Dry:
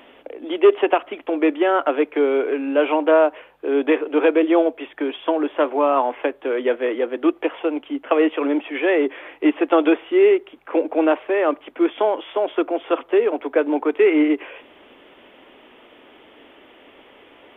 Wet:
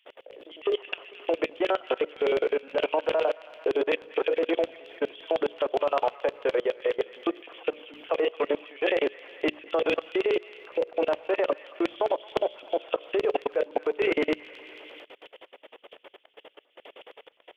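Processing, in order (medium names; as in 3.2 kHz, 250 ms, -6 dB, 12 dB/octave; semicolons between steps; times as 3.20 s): LFO high-pass square 9.7 Hz 490–3000 Hz; bass shelf 110 Hz -6 dB; hum notches 60/120/180/240/300/360/420/480/540/600 Hz; feedback echo behind a high-pass 223 ms, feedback 41%, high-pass 1.5 kHz, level -5.5 dB; on a send at -16.5 dB: reverberation RT60 2.2 s, pre-delay 7 ms; on the sum: level held to a coarse grid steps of 23 dB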